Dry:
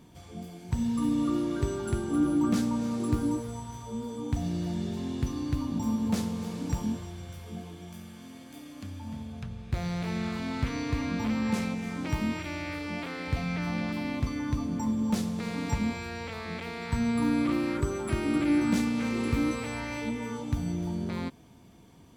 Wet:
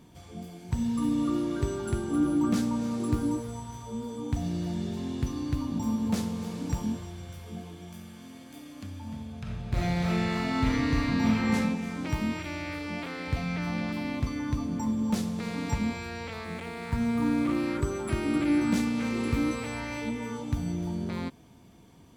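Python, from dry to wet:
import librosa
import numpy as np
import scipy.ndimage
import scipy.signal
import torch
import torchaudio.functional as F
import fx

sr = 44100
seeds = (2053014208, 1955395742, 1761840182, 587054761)

y = fx.reverb_throw(x, sr, start_s=9.42, length_s=2.11, rt60_s=0.91, drr_db=-4.0)
y = fx.median_filter(y, sr, points=9, at=(16.44, 17.57))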